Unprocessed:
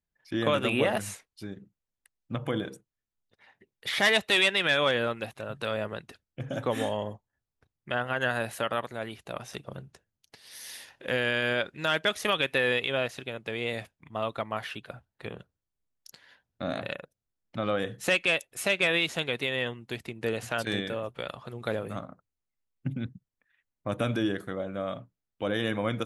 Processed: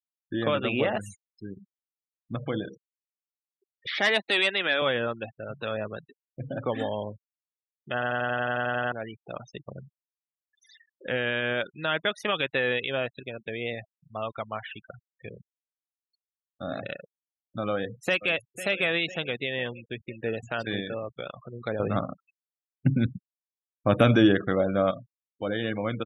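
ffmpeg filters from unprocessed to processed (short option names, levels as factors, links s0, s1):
-filter_complex "[0:a]asettb=1/sr,asplit=3[s0][s1][s2];[s0]atrim=end=3.884[s3];[s1]atrim=start=3.88:end=4.82,asetpts=PTS-STARTPTS,afade=t=in:d=0.004:c=qsin,afade=t=out:st=0.936:d=0.004:c=qsin,highpass=f=200:w=0.5412,highpass=f=200:w=1.3066[s4];[s2]atrim=start=4.816[s5];[s3][s4]acrossfade=d=0.004:c1=hsin:c2=qsin[s6];[s6][s5]acrossfade=d=0.004:c1=qsin:c2=hsin,asettb=1/sr,asplit=3[s7][s8][s9];[s7]atrim=end=13.754[s10];[s8]atrim=start=13.75:end=16.71,asetpts=PTS-STARTPTS,afade=t=in:d=0.004:c=qsin,afade=t=out:st=2.956:d=0.004:c=qsin,equalizer=f=290:w=0.67:g=-3.5[s11];[s9]atrim=start=16.706[s12];[s10][s11]acrossfade=d=0.004:c1=hsin:c2=qsin[s13];[s13][s12]acrossfade=d=0.004:c1=qsin:c2=hsin,asplit=2[s14][s15];[s15]afade=t=in:st=17.71:d=0.01,afade=t=out:st=18.31:d=0.01,aecho=0:1:500|1000|1500|2000|2500|3000|3500|4000:0.211349|0.137377|0.0892949|0.0580417|0.0377271|0.0245226|0.0159397|0.0103608[s16];[s14][s16]amix=inputs=2:normalize=0,asplit=14[s17][s18][s19][s20][s21][s22][s23][s24][s25][s26][s27][s28][s29][s30];[s17]atrim=end=8.022[s31];[s18]atrim=start=7.928:end=8.022[s32];[s19]atrim=start=7.928:end=8.022[s33];[s20]atrim=start=7.928:end=8.022[s34];[s21]atrim=start=7.928:end=8.022[s35];[s22]atrim=start=7.928:end=8.022[s36];[s23]atrim=start=7.928:end=8.022[s37];[s24]atrim=start=7.928:end=8.022[s38];[s25]atrim=start=7.928:end=8.022[s39];[s26]atrim=start=7.928:end=8.022[s40];[s27]atrim=start=7.928:end=8.022[s41];[s28]atrim=start=8.918:end=21.802[s42];[s29]atrim=start=21.798:end=24.912,asetpts=PTS-STARTPTS,volume=2.99[s43];[s30]atrim=start=24.908[s44];[s31][s32]acrossfade=d=0.004:c1=hsin:c2=hsin[s45];[s45][s33]acrossfade=d=0.004:c1=hsin:c2=hsin[s46];[s46][s34]acrossfade=d=0.004:c1=hsin:c2=hsin[s47];[s47][s35]acrossfade=d=0.004:c1=hsin:c2=hsin[s48];[s48][s36]acrossfade=d=0.004:c1=hsin:c2=hsin[s49];[s49][s37]acrossfade=d=0.004:c1=hsin:c2=hsin[s50];[s50][s38]acrossfade=d=0.004:c1=hsin:c2=hsin[s51];[s51][s39]acrossfade=d=0.004:c1=hsin:c2=hsin[s52];[s52][s40]acrossfade=d=0.004:c1=hsin:c2=hsin[s53];[s53][s41]acrossfade=d=0.004:c1=hsin:c2=hsin[s54];[s54][s42]acrossfade=d=0.004:c1=hsin:c2=hsin[s55];[s55][s43]acrossfade=d=0.004:c1=hsin:c2=hsin[s56];[s56][s44]acrossfade=d=0.004:c1=hsin:c2=hsin,afftfilt=real='re*gte(hypot(re,im),0.0178)':imag='im*gte(hypot(re,im),0.0178)':win_size=1024:overlap=0.75,highshelf=f=6200:g=-7,bandreject=f=1000:w=21"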